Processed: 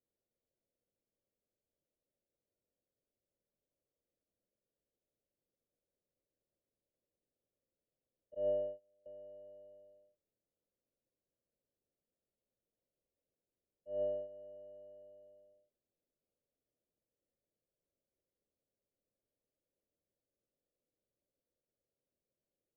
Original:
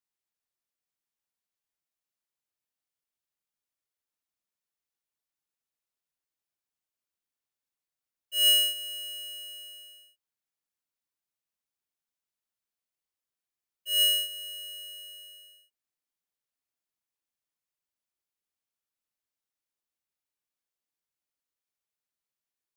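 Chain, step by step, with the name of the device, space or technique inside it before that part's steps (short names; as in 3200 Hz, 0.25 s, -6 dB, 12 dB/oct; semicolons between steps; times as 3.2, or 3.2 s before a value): 8.34–9.06 gate -32 dBFS, range -25 dB; under water (LPF 510 Hz 24 dB/oct; bell 560 Hz +10 dB 0.6 oct); gain +9 dB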